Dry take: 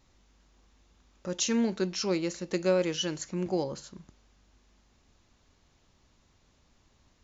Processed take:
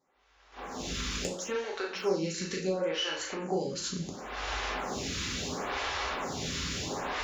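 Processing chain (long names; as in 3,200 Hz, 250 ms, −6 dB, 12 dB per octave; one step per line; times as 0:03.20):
camcorder AGC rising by 32 dB per second
noise gate −45 dBFS, range −14 dB
high-pass filter 100 Hz 6 dB per octave
downward compressor 6 to 1, threshold −36 dBFS, peak gain reduction 18.5 dB
0:01.27–0:03.69: double-tracking delay 37 ms −4 dB
convolution reverb, pre-delay 3 ms, DRR 0.5 dB
mid-hump overdrive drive 9 dB, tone 3,300 Hz, clips at −19.5 dBFS
phaser with staggered stages 0.72 Hz
level +6.5 dB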